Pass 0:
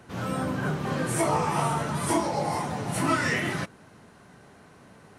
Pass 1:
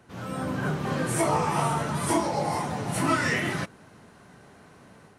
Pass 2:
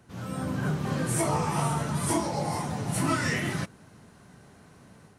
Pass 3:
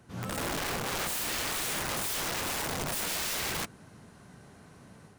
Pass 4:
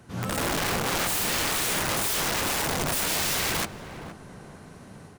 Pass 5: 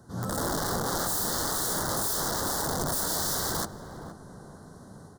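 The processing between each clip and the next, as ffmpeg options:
ffmpeg -i in.wav -af "dynaudnorm=framelen=280:gausssize=3:maxgain=6dB,volume=-5.5dB" out.wav
ffmpeg -i in.wav -af "bass=frequency=250:gain=6,treble=frequency=4000:gain=5,volume=-4dB" out.wav
ffmpeg -i in.wav -af "aeval=exprs='(mod(25.1*val(0)+1,2)-1)/25.1':channel_layout=same" out.wav
ffmpeg -i in.wav -filter_complex "[0:a]asplit=2[link_01][link_02];[link_02]adelay=469,lowpass=frequency=820:poles=1,volume=-8dB,asplit=2[link_03][link_04];[link_04]adelay=469,lowpass=frequency=820:poles=1,volume=0.52,asplit=2[link_05][link_06];[link_06]adelay=469,lowpass=frequency=820:poles=1,volume=0.52,asplit=2[link_07][link_08];[link_08]adelay=469,lowpass=frequency=820:poles=1,volume=0.52,asplit=2[link_09][link_10];[link_10]adelay=469,lowpass=frequency=820:poles=1,volume=0.52,asplit=2[link_11][link_12];[link_12]adelay=469,lowpass=frequency=820:poles=1,volume=0.52[link_13];[link_01][link_03][link_05][link_07][link_09][link_11][link_13]amix=inputs=7:normalize=0,volume=6dB" out.wav
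ffmpeg -i in.wav -af "asuperstop=centerf=2500:order=4:qfactor=1,volume=-1.5dB" out.wav

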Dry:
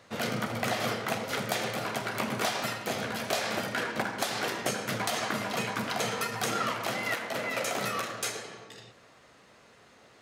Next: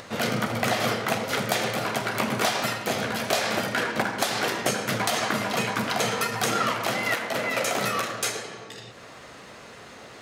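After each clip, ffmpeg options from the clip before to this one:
ffmpeg -i in.wav -af "acompressor=mode=upward:threshold=-41dB:ratio=2.5,volume=5.5dB" out.wav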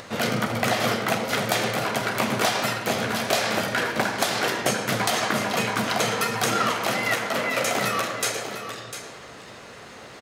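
ffmpeg -i in.wav -af "aecho=1:1:700:0.299,volume=1.5dB" out.wav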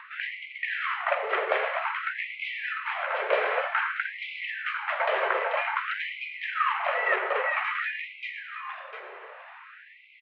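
ffmpeg -i in.wav -af "highpass=frequency=230:width_type=q:width=0.5412,highpass=frequency=230:width_type=q:width=1.307,lowpass=frequency=2700:width_type=q:width=0.5176,lowpass=frequency=2700:width_type=q:width=0.7071,lowpass=frequency=2700:width_type=q:width=1.932,afreqshift=-96,afftfilt=real='re*gte(b*sr/1024,360*pow(2000/360,0.5+0.5*sin(2*PI*0.52*pts/sr)))':imag='im*gte(b*sr/1024,360*pow(2000/360,0.5+0.5*sin(2*PI*0.52*pts/sr)))':win_size=1024:overlap=0.75" out.wav

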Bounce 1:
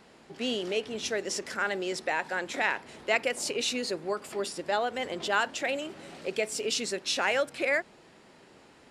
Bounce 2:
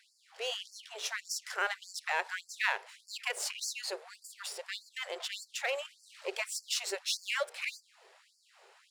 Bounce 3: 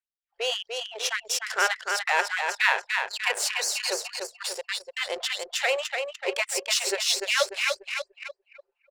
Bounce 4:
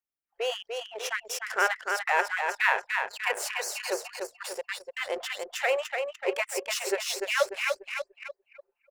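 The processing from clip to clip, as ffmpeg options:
ffmpeg -i in.wav -af "aeval=exprs='if(lt(val(0),0),0.447*val(0),val(0))':channel_layout=same,afftfilt=real='re*gte(b*sr/1024,350*pow(4400/350,0.5+0.5*sin(2*PI*1.7*pts/sr)))':imag='im*gte(b*sr/1024,350*pow(4400/350,0.5+0.5*sin(2*PI*1.7*pts/sr)))':win_size=1024:overlap=0.75" out.wav
ffmpeg -i in.wav -filter_complex "[0:a]asplit=2[link_01][link_02];[link_02]aecho=0:1:294|588|882|1176|1470|1764|2058:0.562|0.298|0.158|0.0837|0.0444|0.0235|0.0125[link_03];[link_01][link_03]amix=inputs=2:normalize=0,anlmdn=0.158,volume=8.5dB" out.wav
ffmpeg -i in.wav -af "equalizer=frequency=250:width_type=o:width=1:gain=5,equalizer=frequency=4000:width_type=o:width=1:gain=-10,equalizer=frequency=8000:width_type=o:width=1:gain=-5" out.wav

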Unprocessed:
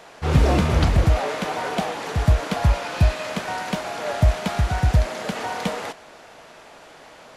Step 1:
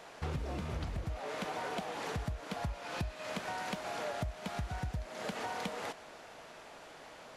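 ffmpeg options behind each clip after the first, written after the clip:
ffmpeg -i in.wav -af "acompressor=threshold=-28dB:ratio=12,volume=-6.5dB" out.wav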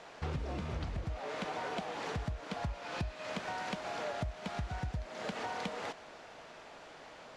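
ffmpeg -i in.wav -af "lowpass=6800" out.wav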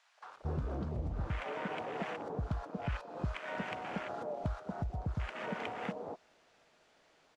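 ffmpeg -i in.wav -filter_complex "[0:a]afwtdn=0.00794,highshelf=frequency=5200:gain=6,acrossover=split=880[link_01][link_02];[link_01]adelay=230[link_03];[link_03][link_02]amix=inputs=2:normalize=0,volume=1.5dB" out.wav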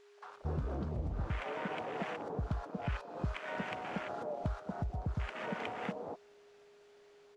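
ffmpeg -i in.wav -af "aeval=exprs='val(0)+0.00112*sin(2*PI*410*n/s)':channel_layout=same" out.wav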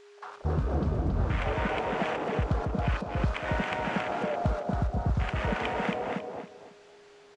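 ffmpeg -i in.wav -af "aecho=1:1:274|548|822:0.631|0.158|0.0394,aresample=22050,aresample=44100,volume=8dB" out.wav

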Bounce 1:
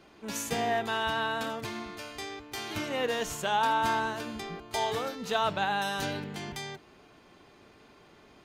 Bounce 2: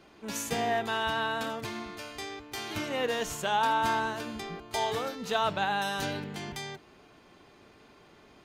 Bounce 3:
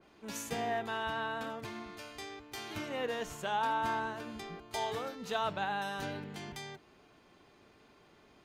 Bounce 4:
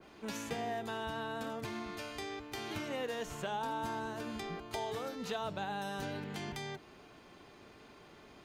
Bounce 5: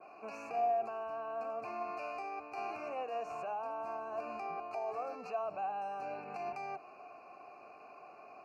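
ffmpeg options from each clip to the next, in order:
ffmpeg -i in.wav -af anull out.wav
ffmpeg -i in.wav -af "adynamicequalizer=threshold=0.00562:dfrequency=2800:dqfactor=0.7:tfrequency=2800:tqfactor=0.7:attack=5:release=100:ratio=0.375:range=3.5:mode=cutabove:tftype=highshelf,volume=-5.5dB" out.wav
ffmpeg -i in.wav -filter_complex "[0:a]acrossover=split=610|4500[link_01][link_02][link_03];[link_01]acompressor=threshold=-45dB:ratio=4[link_04];[link_02]acompressor=threshold=-49dB:ratio=4[link_05];[link_03]acompressor=threshold=-59dB:ratio=4[link_06];[link_04][link_05][link_06]amix=inputs=3:normalize=0,volume=5.5dB" out.wav
ffmpeg -i in.wav -filter_complex "[0:a]asuperstop=centerf=3400:order=12:qfactor=2.5,alimiter=level_in=10.5dB:limit=-24dB:level=0:latency=1:release=44,volume=-10.5dB,asplit=3[link_01][link_02][link_03];[link_01]bandpass=frequency=730:width_type=q:width=8,volume=0dB[link_04];[link_02]bandpass=frequency=1090:width_type=q:width=8,volume=-6dB[link_05];[link_03]bandpass=frequency=2440:width_type=q:width=8,volume=-9dB[link_06];[link_04][link_05][link_06]amix=inputs=3:normalize=0,volume=14dB" out.wav

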